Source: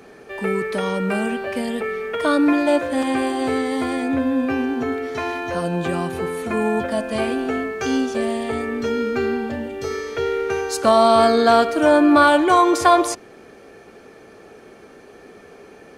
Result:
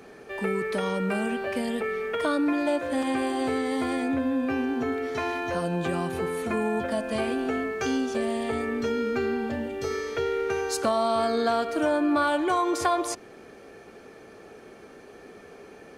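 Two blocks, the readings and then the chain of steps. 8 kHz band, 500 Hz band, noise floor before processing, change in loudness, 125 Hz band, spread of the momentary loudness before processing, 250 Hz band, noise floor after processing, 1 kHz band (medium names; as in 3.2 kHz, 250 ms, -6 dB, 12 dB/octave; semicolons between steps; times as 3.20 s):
-5.5 dB, -7.5 dB, -45 dBFS, -7.5 dB, -5.0 dB, 12 LU, -7.0 dB, -48 dBFS, -9.0 dB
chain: compression 2.5:1, threshold -21 dBFS, peak gain reduction 8.5 dB; trim -3 dB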